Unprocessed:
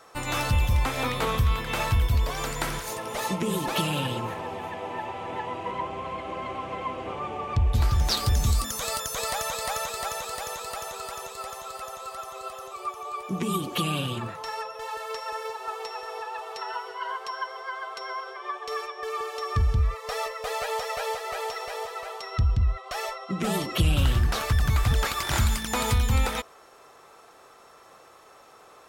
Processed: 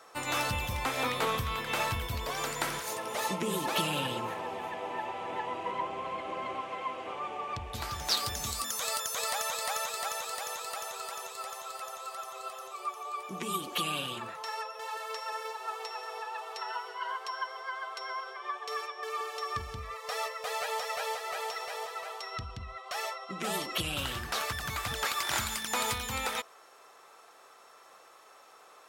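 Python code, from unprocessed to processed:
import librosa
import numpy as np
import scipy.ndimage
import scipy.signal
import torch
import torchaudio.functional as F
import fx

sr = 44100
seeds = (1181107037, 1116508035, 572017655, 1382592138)

y = fx.highpass(x, sr, hz=fx.steps((0.0, 300.0), (6.61, 650.0)), slope=6)
y = F.gain(torch.from_numpy(y), -2.0).numpy()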